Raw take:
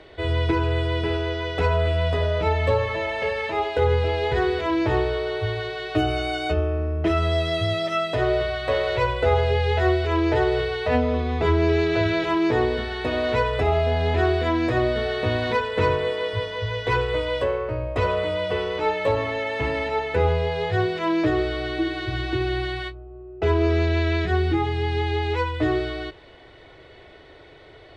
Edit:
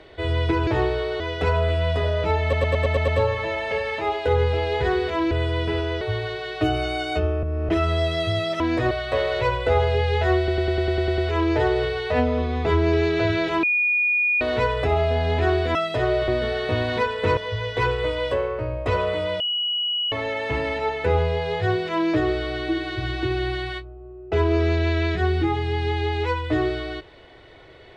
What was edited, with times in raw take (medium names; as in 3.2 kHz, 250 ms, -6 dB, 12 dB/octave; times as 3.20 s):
0.67–1.37 s: swap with 4.82–5.35 s
2.59 s: stutter 0.11 s, 7 plays
6.77–7.03 s: reverse
7.94–8.47 s: swap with 14.51–14.82 s
9.94 s: stutter 0.10 s, 9 plays
12.39–13.17 s: bleep 2.45 kHz -17.5 dBFS
15.91–16.47 s: delete
18.50–19.22 s: bleep 2.92 kHz -21.5 dBFS